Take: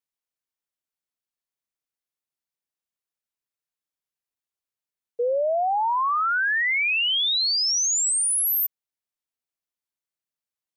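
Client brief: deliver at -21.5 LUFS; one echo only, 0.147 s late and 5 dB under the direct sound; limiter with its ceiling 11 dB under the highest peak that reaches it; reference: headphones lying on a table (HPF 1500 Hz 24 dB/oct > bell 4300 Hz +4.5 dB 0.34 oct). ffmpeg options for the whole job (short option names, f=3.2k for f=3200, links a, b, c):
-af "alimiter=level_in=6.5dB:limit=-24dB:level=0:latency=1,volume=-6.5dB,highpass=f=1.5k:w=0.5412,highpass=f=1.5k:w=1.3066,equalizer=f=4.3k:t=o:w=0.34:g=4.5,aecho=1:1:147:0.562,volume=8dB"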